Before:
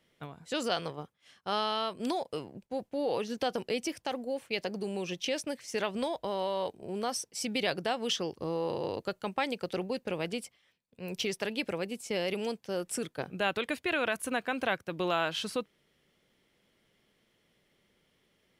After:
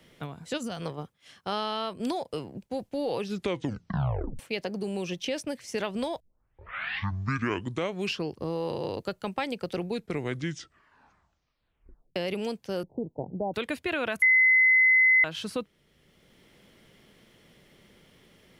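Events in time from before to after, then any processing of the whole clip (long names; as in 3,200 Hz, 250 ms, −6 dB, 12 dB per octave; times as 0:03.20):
0:00.58–0:00.81: gain on a spectral selection 270–5,700 Hz −10 dB
0:03.18: tape stop 1.21 s
0:06.20: tape start 2.17 s
0:09.73: tape stop 2.43 s
0:12.83–0:13.54: Butterworth low-pass 930 Hz 96 dB per octave
0:14.22–0:15.24: beep over 2,040 Hz −13.5 dBFS
whole clip: low-shelf EQ 190 Hz +7 dB; multiband upward and downward compressor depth 40%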